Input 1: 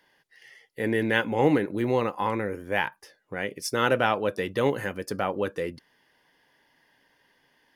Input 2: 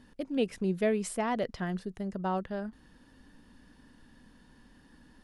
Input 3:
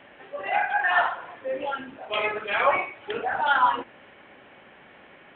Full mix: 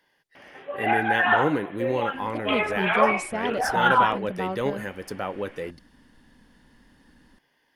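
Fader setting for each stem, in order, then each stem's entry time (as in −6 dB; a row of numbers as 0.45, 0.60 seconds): −3.0, +1.0, +1.0 decibels; 0.00, 2.15, 0.35 seconds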